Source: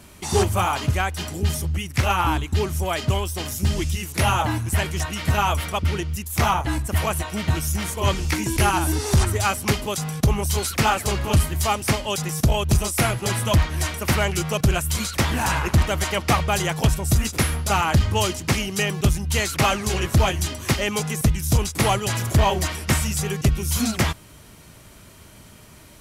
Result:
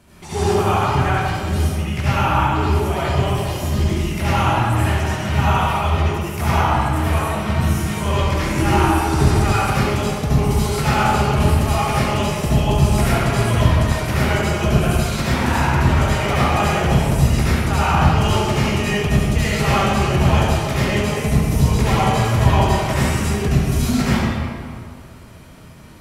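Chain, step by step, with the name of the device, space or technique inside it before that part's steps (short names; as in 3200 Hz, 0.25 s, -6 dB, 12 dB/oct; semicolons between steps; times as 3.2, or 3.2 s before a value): swimming-pool hall (reverb RT60 2.1 s, pre-delay 65 ms, DRR -10 dB; high shelf 3900 Hz -7 dB); gain -5.5 dB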